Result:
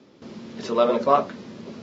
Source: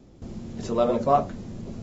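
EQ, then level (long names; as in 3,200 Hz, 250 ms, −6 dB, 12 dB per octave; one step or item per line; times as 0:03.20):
loudspeaker in its box 330–5,300 Hz, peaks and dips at 330 Hz −5 dB, 510 Hz −3 dB, 730 Hz −9 dB
+7.5 dB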